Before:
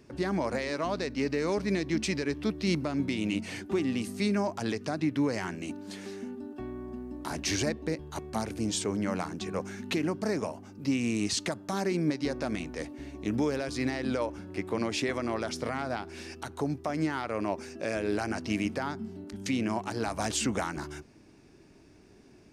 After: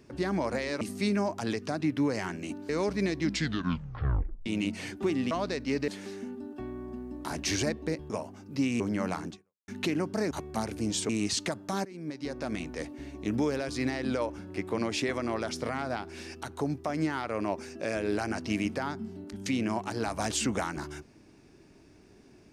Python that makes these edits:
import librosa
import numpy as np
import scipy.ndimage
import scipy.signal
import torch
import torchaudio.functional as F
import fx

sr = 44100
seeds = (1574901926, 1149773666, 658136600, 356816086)

y = fx.edit(x, sr, fx.swap(start_s=0.81, length_s=0.57, other_s=4.0, other_length_s=1.88),
    fx.tape_stop(start_s=1.9, length_s=1.25),
    fx.swap(start_s=8.1, length_s=0.78, other_s=10.39, other_length_s=0.7),
    fx.fade_out_span(start_s=9.38, length_s=0.38, curve='exp'),
    fx.fade_in_from(start_s=11.85, length_s=0.79, floor_db=-22.5), tone=tone)